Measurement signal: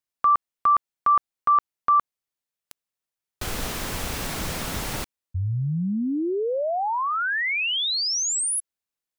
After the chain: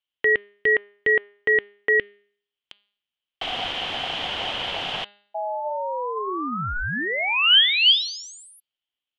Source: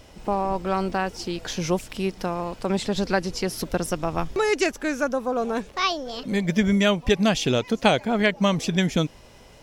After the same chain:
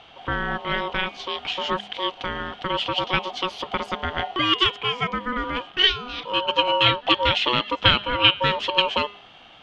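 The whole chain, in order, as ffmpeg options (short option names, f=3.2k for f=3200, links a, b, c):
-af "aeval=exprs='val(0)*sin(2*PI*740*n/s)':c=same,lowpass=f=3.1k:t=q:w=8.2,bandreject=f=204:t=h:w=4,bandreject=f=408:t=h:w=4,bandreject=f=612:t=h:w=4,bandreject=f=816:t=h:w=4,bandreject=f=1.02k:t=h:w=4,bandreject=f=1.224k:t=h:w=4,bandreject=f=1.428k:t=h:w=4,bandreject=f=1.632k:t=h:w=4,bandreject=f=1.836k:t=h:w=4,bandreject=f=2.04k:t=h:w=4,bandreject=f=2.244k:t=h:w=4,bandreject=f=2.448k:t=h:w=4,bandreject=f=2.652k:t=h:w=4,bandreject=f=2.856k:t=h:w=4,bandreject=f=3.06k:t=h:w=4,bandreject=f=3.264k:t=h:w=4,bandreject=f=3.468k:t=h:w=4,bandreject=f=3.672k:t=h:w=4,bandreject=f=3.876k:t=h:w=4,bandreject=f=4.08k:t=h:w=4,bandreject=f=4.284k:t=h:w=4,bandreject=f=4.488k:t=h:w=4,bandreject=f=4.692k:t=h:w=4"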